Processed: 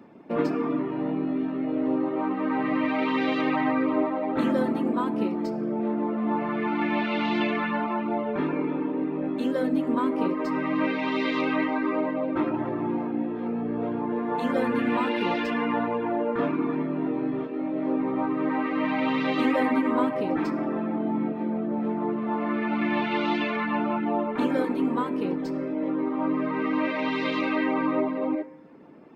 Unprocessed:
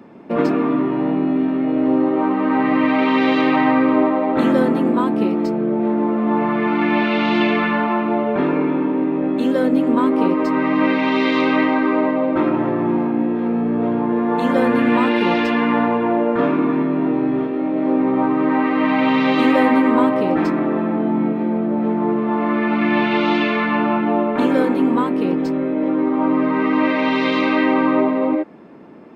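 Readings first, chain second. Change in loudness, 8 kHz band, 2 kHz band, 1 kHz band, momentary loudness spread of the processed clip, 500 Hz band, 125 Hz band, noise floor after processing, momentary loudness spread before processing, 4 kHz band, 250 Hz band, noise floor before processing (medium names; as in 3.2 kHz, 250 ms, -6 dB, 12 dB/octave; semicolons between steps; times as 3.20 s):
-9.0 dB, no reading, -8.5 dB, -8.5 dB, 4 LU, -8.5 dB, -8.5 dB, -31 dBFS, 4 LU, -8.5 dB, -9.0 dB, -21 dBFS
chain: reverb removal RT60 0.62 s; FDN reverb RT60 1.3 s, high-frequency decay 0.65×, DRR 12 dB; trim -7 dB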